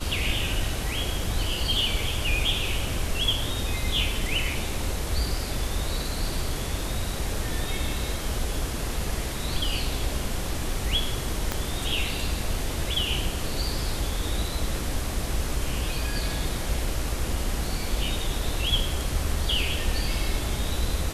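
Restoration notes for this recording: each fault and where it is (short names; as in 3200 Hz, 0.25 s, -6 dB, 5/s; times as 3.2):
11.52 pop -10 dBFS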